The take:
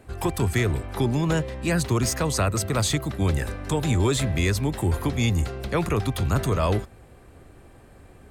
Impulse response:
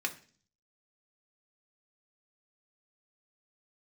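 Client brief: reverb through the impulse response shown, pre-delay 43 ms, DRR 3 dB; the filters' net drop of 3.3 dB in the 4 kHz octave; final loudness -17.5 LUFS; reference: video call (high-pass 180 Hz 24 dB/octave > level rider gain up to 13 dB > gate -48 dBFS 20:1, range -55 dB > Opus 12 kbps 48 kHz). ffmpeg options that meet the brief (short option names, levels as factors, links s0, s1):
-filter_complex "[0:a]equalizer=f=4000:t=o:g=-4,asplit=2[s0][s1];[1:a]atrim=start_sample=2205,adelay=43[s2];[s1][s2]afir=irnorm=-1:irlink=0,volume=0.422[s3];[s0][s3]amix=inputs=2:normalize=0,highpass=f=180:w=0.5412,highpass=f=180:w=1.3066,dynaudnorm=m=4.47,agate=range=0.00178:threshold=0.00398:ratio=20,volume=3.16" -ar 48000 -c:a libopus -b:a 12k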